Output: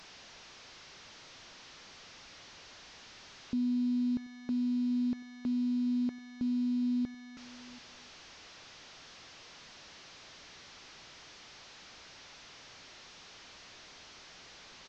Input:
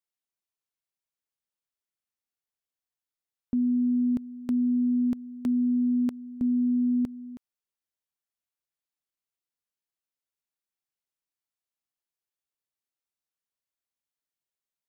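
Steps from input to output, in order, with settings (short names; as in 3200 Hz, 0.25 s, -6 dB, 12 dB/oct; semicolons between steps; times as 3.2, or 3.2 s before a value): delta modulation 32 kbps, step -40 dBFS; echo 0.734 s -22 dB; gain -6 dB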